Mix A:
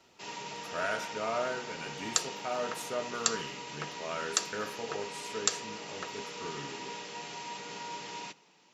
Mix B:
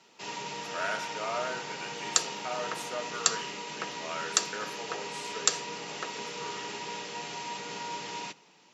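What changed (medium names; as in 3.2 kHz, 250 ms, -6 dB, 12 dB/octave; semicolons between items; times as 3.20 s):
speech: add frequency weighting A; background +3.5 dB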